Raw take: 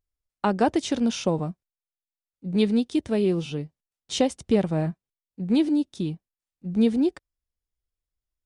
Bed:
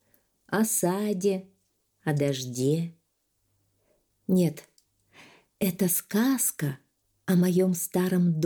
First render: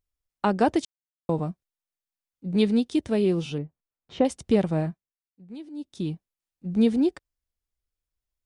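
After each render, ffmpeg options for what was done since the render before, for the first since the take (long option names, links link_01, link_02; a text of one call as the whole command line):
ffmpeg -i in.wav -filter_complex "[0:a]asettb=1/sr,asplit=3[link_01][link_02][link_03];[link_01]atrim=end=3.584[link_04];[link_02]atrim=start=3.58:end=4.25,asetpts=PTS-STARTPTS,afade=type=in:duration=0.004:curve=qsin,afade=type=out:start_time=0.666:duration=0.004:curve=qsin,lowpass=1600[link_05];[link_03]atrim=start=4.246[link_06];[link_04][link_05]acrossfade=duration=0.004:curve1=hsin:curve2=qsin[link_07];[link_07][link_06]acrossfade=duration=0.004:curve1=qsin:curve2=hsin,asplit=5[link_08][link_09][link_10][link_11][link_12];[link_08]atrim=end=0.85,asetpts=PTS-STARTPTS,afade=type=out:start_time=0.846:duration=0.004:curve=hsin[link_13];[link_09]atrim=start=0.85:end=1.29,asetpts=PTS-STARTPTS,volume=0[link_14];[link_10]atrim=start=1.29:end=5.14,asetpts=PTS-STARTPTS,afade=type=in:duration=0.004:curve=hsin,afade=type=out:start_time=3.48:duration=0.37:silence=0.112202[link_15];[link_11]atrim=start=5.14:end=5.73,asetpts=PTS-STARTPTS,volume=-19dB[link_16];[link_12]atrim=start=5.73,asetpts=PTS-STARTPTS,afade=type=in:duration=0.37:silence=0.112202[link_17];[link_13][link_14][link_15][link_16][link_17]concat=n=5:v=0:a=1" out.wav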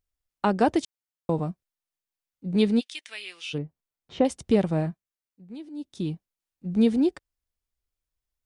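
ffmpeg -i in.wav -filter_complex "[0:a]asplit=3[link_01][link_02][link_03];[link_01]afade=type=out:start_time=2.79:duration=0.02[link_04];[link_02]highpass=frequency=2200:width_type=q:width=1.9,afade=type=in:start_time=2.79:duration=0.02,afade=type=out:start_time=3.53:duration=0.02[link_05];[link_03]afade=type=in:start_time=3.53:duration=0.02[link_06];[link_04][link_05][link_06]amix=inputs=3:normalize=0" out.wav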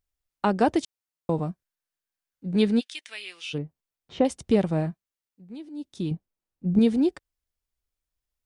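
ffmpeg -i in.wav -filter_complex "[0:a]asettb=1/sr,asplit=3[link_01][link_02][link_03];[link_01]atrim=end=1.494[link_04];[link_02]atrim=start=1.49:end=2.94,asetpts=PTS-STARTPTS,afade=type=in:duration=0.004:curve=qsin,afade=type=out:start_time=1.446:duration=0.004:curve=qsin,equalizer=frequency=1600:width_type=o:width=0.29:gain=7[link_05];[link_03]atrim=start=2.936[link_06];[link_04][link_05]acrossfade=duration=0.004:curve1=hsin:curve2=qsin[link_07];[link_07][link_06]acrossfade=duration=0.004:curve1=qsin:curve2=hsin,asettb=1/sr,asplit=3[link_08][link_09][link_10];[link_08]atrim=end=6.114[link_11];[link_09]atrim=start=6.11:end=6.79,asetpts=PTS-STARTPTS,afade=type=in:duration=0.004:curve=qsin,afade=type=out:start_time=0.676:duration=0.004:curve=qsin,tiltshelf=frequency=1200:gain=6.5[link_12];[link_10]atrim=start=6.786[link_13];[link_11][link_12]acrossfade=duration=0.004:curve1=hsin:curve2=qsin[link_14];[link_14][link_13]acrossfade=duration=0.004:curve1=qsin:curve2=hsin" out.wav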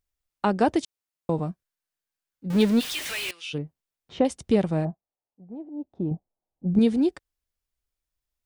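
ffmpeg -i in.wav -filter_complex "[0:a]asettb=1/sr,asplit=3[link_01][link_02][link_03];[link_01]atrim=end=2.504[link_04];[link_02]atrim=start=2.5:end=3.31,asetpts=PTS-STARTPTS,afade=type=in:duration=0.004:curve=qsin,afade=type=out:start_time=0.806:duration=0.004:curve=qsin,aeval=exprs='val(0)+0.5*0.0398*sgn(val(0))':channel_layout=same[link_05];[link_03]atrim=start=3.306[link_06];[link_04][link_05]acrossfade=duration=0.004:curve1=hsin:curve2=qsin[link_07];[link_07][link_06]acrossfade=duration=0.004:curve1=qsin:curve2=hsin,asplit=3[link_08][link_09][link_10];[link_08]afade=type=out:start_time=4.84:duration=0.02[link_11];[link_09]lowpass=frequency=740:width_type=q:width=3.2,afade=type=in:start_time=4.84:duration=0.02,afade=type=out:start_time=6.66:duration=0.02[link_12];[link_10]afade=type=in:start_time=6.66:duration=0.02[link_13];[link_11][link_12][link_13]amix=inputs=3:normalize=0" out.wav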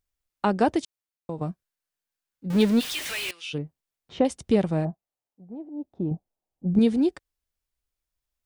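ffmpeg -i in.wav -filter_complex "[0:a]asplit=2[link_01][link_02];[link_01]atrim=end=1.41,asetpts=PTS-STARTPTS,afade=type=out:start_time=0.62:duration=0.79:silence=0.316228[link_03];[link_02]atrim=start=1.41,asetpts=PTS-STARTPTS,afade=type=in:duration=0.004:curve=hsin:silence=0.316228[link_04];[link_03][link_04]concat=n=2:v=0:a=1" out.wav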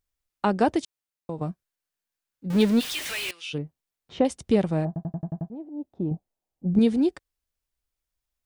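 ffmpeg -i in.wav -filter_complex "[0:a]asplit=8[link_01][link_02][link_03][link_04][link_05][link_06][link_07][link_08];[link_01]atrim=end=4.962[link_09];[link_02]atrim=start=4.868:end=4.962[link_10];[link_03]atrim=start=4.868:end=4.962[link_11];[link_04]atrim=start=4.868:end=4.962[link_12];[link_05]atrim=start=4.868:end=4.962[link_13];[link_06]atrim=start=4.868:end=4.962[link_14];[link_07]atrim=start=4.868:end=4.962[link_15];[link_08]atrim=start=5.498[link_16];[link_09][link_10]acrossfade=duration=0.004:curve1=hsin:curve2=hsin[link_17];[link_17][link_11]acrossfade=duration=0.004:curve1=hsin:curve2=hsin[link_18];[link_18][link_12]acrossfade=duration=0.004:curve1=hsin:curve2=hsin[link_19];[link_19][link_13]acrossfade=duration=0.004:curve1=hsin:curve2=hsin[link_20];[link_20][link_14]acrossfade=duration=0.004:curve1=hsin:curve2=hsin[link_21];[link_21][link_15]acrossfade=duration=0.004:curve1=hsin:curve2=hsin[link_22];[link_22][link_16]acrossfade=duration=0.004:curve1=hsin:curve2=hsin" out.wav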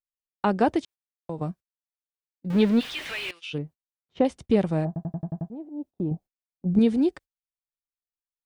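ffmpeg -i in.wav -filter_complex "[0:a]acrossover=split=4000[link_01][link_02];[link_02]acompressor=threshold=-51dB:ratio=4:attack=1:release=60[link_03];[link_01][link_03]amix=inputs=2:normalize=0,agate=range=-26dB:threshold=-42dB:ratio=16:detection=peak" out.wav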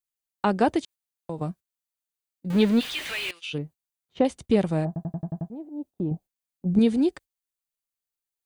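ffmpeg -i in.wav -af "highshelf=frequency=4300:gain=7.5,bandreject=frequency=5400:width=13" out.wav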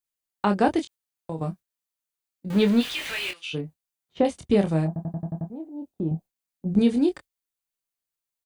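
ffmpeg -i in.wav -filter_complex "[0:a]asplit=2[link_01][link_02];[link_02]adelay=25,volume=-6.5dB[link_03];[link_01][link_03]amix=inputs=2:normalize=0" out.wav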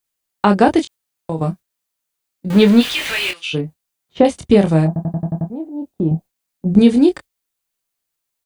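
ffmpeg -i in.wav -af "volume=9.5dB,alimiter=limit=-1dB:level=0:latency=1" out.wav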